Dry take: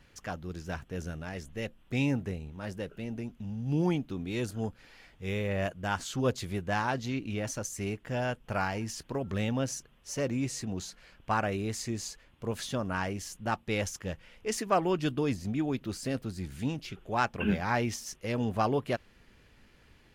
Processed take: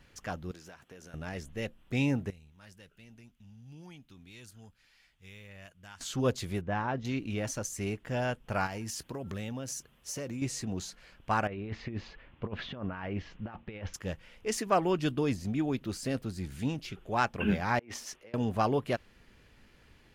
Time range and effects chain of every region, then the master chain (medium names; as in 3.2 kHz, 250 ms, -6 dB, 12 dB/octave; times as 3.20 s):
0.51–1.14 s: high-pass 480 Hz 6 dB/octave + compression 8:1, threshold -46 dBFS
2.30–6.01 s: amplifier tone stack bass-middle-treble 5-5-5 + compression 2:1, threshold -48 dBFS
6.61–7.05 s: tape spacing loss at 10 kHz 28 dB + band-stop 4.5 kHz, Q 6.7
8.66–10.42 s: high-pass 42 Hz + treble shelf 7.6 kHz +8.5 dB + compression, threshold -34 dBFS
11.47–13.94 s: inverse Chebyshev low-pass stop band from 11 kHz, stop band 70 dB + compressor with a negative ratio -36 dBFS, ratio -0.5
17.79–18.34 s: tone controls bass -13 dB, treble -11 dB + compressor with a negative ratio -47 dBFS + three bands expanded up and down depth 70%
whole clip: none